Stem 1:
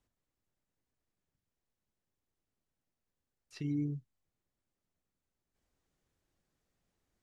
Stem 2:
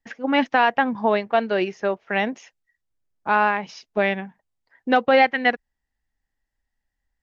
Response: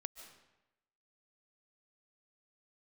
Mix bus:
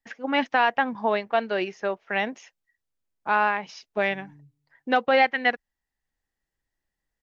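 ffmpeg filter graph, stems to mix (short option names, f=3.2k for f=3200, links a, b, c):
-filter_complex "[0:a]acrossover=split=130|3000[a][b][c];[b]acompressor=threshold=-48dB:ratio=6[d];[a][d][c]amix=inputs=3:normalize=0,adelay=500,volume=-10dB,asplit=2[e][f];[f]volume=-9dB[g];[1:a]lowshelf=f=400:g=-6,volume=-2dB[h];[2:a]atrim=start_sample=2205[i];[g][i]afir=irnorm=-1:irlink=0[j];[e][h][j]amix=inputs=3:normalize=0"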